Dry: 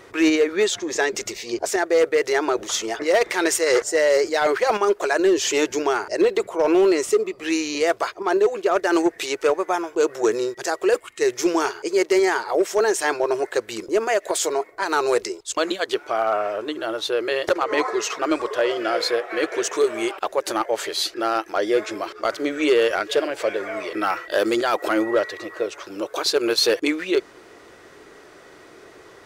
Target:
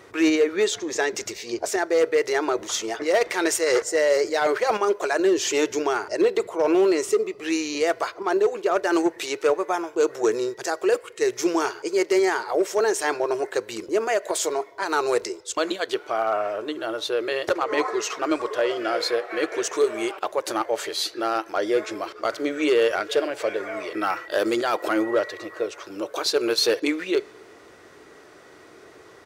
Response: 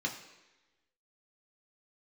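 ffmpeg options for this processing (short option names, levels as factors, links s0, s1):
-filter_complex "[0:a]highpass=57,asplit=2[s0][s1];[s1]aecho=1:1:2:0.65[s2];[1:a]atrim=start_sample=2205,asetrate=35721,aresample=44100[s3];[s2][s3]afir=irnorm=-1:irlink=0,volume=0.0708[s4];[s0][s4]amix=inputs=2:normalize=0,volume=0.794"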